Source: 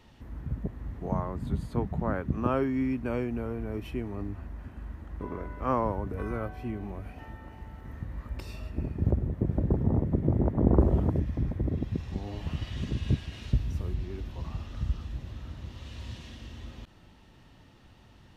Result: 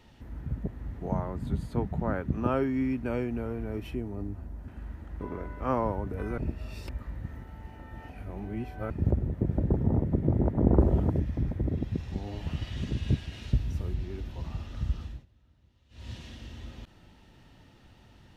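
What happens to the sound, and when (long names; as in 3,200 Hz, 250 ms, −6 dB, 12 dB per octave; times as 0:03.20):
0:03.95–0:04.68: parametric band 2,300 Hz −9 dB 2.1 octaves
0:06.38–0:08.90: reverse
0:15.04–0:16.11: duck −23 dB, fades 0.22 s
whole clip: notch filter 1,100 Hz, Q 11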